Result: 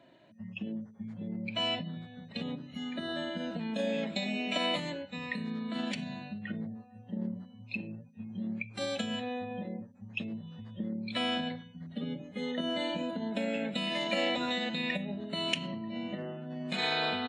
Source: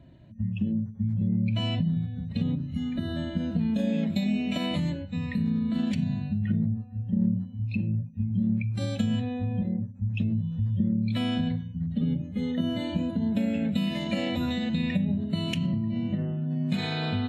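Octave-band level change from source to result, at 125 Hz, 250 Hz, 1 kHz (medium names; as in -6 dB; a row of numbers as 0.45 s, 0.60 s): -16.5 dB, -9.5 dB, +3.5 dB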